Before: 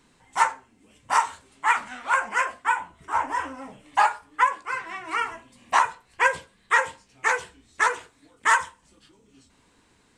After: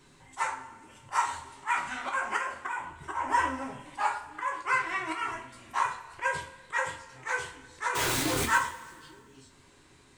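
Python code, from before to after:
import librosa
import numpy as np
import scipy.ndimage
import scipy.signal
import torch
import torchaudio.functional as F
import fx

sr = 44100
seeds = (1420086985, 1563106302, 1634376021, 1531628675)

y = fx.zero_step(x, sr, step_db=-25.0, at=(7.95, 8.58))
y = fx.auto_swell(y, sr, attack_ms=231.0)
y = fx.rev_double_slope(y, sr, seeds[0], early_s=0.28, late_s=1.7, knee_db=-18, drr_db=1.0)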